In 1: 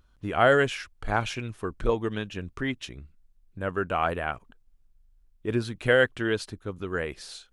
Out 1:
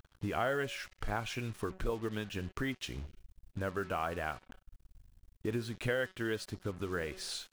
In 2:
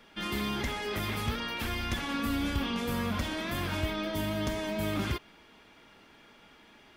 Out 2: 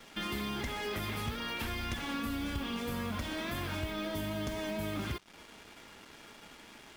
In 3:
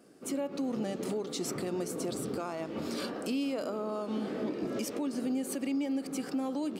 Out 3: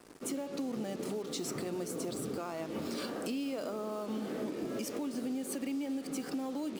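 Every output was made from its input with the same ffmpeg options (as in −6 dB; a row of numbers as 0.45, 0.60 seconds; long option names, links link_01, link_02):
-af "acompressor=threshold=-40dB:ratio=3,bandreject=frequency=187.6:width_type=h:width=4,bandreject=frequency=375.2:width_type=h:width=4,bandreject=frequency=562.8:width_type=h:width=4,bandreject=frequency=750.4:width_type=h:width=4,bandreject=frequency=938:width_type=h:width=4,bandreject=frequency=1125.6:width_type=h:width=4,bandreject=frequency=1313.2:width_type=h:width=4,bandreject=frequency=1500.8:width_type=h:width=4,bandreject=frequency=1688.4:width_type=h:width=4,bandreject=frequency=1876:width_type=h:width=4,bandreject=frequency=2063.6:width_type=h:width=4,bandreject=frequency=2251.2:width_type=h:width=4,bandreject=frequency=2438.8:width_type=h:width=4,bandreject=frequency=2626.4:width_type=h:width=4,bandreject=frequency=2814:width_type=h:width=4,bandreject=frequency=3001.6:width_type=h:width=4,bandreject=frequency=3189.2:width_type=h:width=4,bandreject=frequency=3376.8:width_type=h:width=4,bandreject=frequency=3564.4:width_type=h:width=4,bandreject=frequency=3752:width_type=h:width=4,bandreject=frequency=3939.6:width_type=h:width=4,bandreject=frequency=4127.2:width_type=h:width=4,bandreject=frequency=4314.8:width_type=h:width=4,bandreject=frequency=4502.4:width_type=h:width=4,bandreject=frequency=4690:width_type=h:width=4,bandreject=frequency=4877.6:width_type=h:width=4,bandreject=frequency=5065.2:width_type=h:width=4,bandreject=frequency=5252.8:width_type=h:width=4,bandreject=frequency=5440.4:width_type=h:width=4,bandreject=frequency=5628:width_type=h:width=4,bandreject=frequency=5815.6:width_type=h:width=4,bandreject=frequency=6003.2:width_type=h:width=4,bandreject=frequency=6190.8:width_type=h:width=4,bandreject=frequency=6378.4:width_type=h:width=4,bandreject=frequency=6566:width_type=h:width=4,bandreject=frequency=6753.6:width_type=h:width=4,bandreject=frequency=6941.2:width_type=h:width=4,bandreject=frequency=7128.8:width_type=h:width=4,bandreject=frequency=7316.4:width_type=h:width=4,acrusher=bits=8:mix=0:aa=0.5,volume=4dB"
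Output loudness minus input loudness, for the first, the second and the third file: −10.0, −4.0, −3.0 LU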